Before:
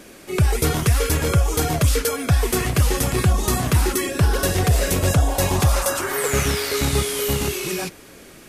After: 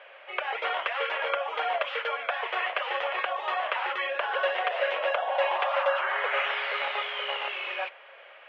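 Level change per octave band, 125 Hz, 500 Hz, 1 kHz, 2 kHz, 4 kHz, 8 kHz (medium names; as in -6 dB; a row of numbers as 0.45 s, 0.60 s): under -40 dB, -6.5 dB, -0.5 dB, -0.5 dB, -6.0 dB, under -40 dB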